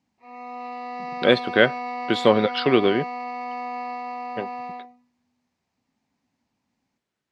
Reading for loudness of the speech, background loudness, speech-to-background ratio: −21.0 LKFS, −32.0 LKFS, 11.0 dB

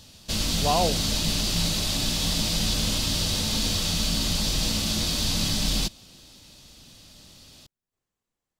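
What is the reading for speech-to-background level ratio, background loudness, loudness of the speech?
−3.0 dB, −24.5 LKFS, −27.5 LKFS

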